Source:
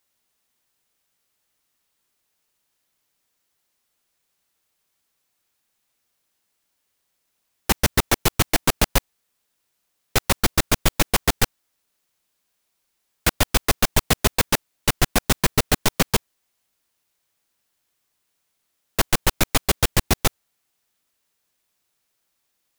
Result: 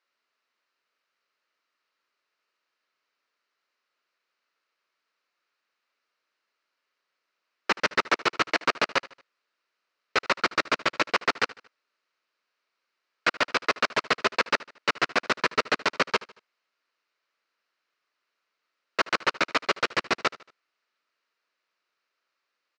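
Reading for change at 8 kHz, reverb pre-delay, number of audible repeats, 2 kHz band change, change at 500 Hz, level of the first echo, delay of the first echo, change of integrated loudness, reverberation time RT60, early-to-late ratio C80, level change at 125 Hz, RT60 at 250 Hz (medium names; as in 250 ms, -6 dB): -17.0 dB, no reverb, 3, +1.0 dB, -3.0 dB, -20.0 dB, 76 ms, -4.5 dB, no reverb, no reverb, -21.5 dB, no reverb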